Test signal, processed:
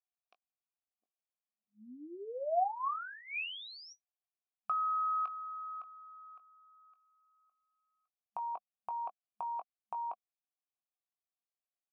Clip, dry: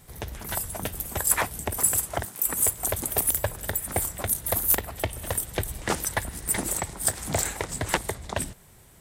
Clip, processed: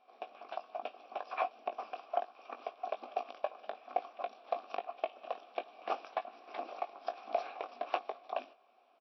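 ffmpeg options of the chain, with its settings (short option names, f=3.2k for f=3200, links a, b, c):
-filter_complex "[0:a]asplit=3[a][b][c];[a]bandpass=f=730:t=q:w=8,volume=0dB[d];[b]bandpass=f=1.09k:t=q:w=8,volume=-6dB[e];[c]bandpass=f=2.44k:t=q:w=8,volume=-9dB[f];[d][e][f]amix=inputs=3:normalize=0,asplit=2[g][h];[h]adelay=20,volume=-9dB[i];[g][i]amix=inputs=2:normalize=0,afftfilt=real='re*between(b*sr/4096,210,5800)':imag='im*between(b*sr/4096,210,5800)':win_size=4096:overlap=0.75,volume=2dB"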